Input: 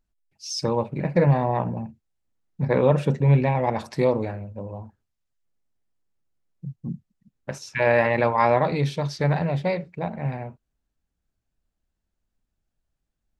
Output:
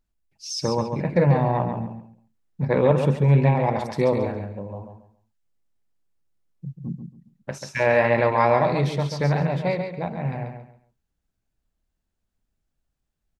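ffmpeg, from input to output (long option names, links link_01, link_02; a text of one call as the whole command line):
ffmpeg -i in.wav -af "aecho=1:1:138|276|414:0.447|0.112|0.0279" out.wav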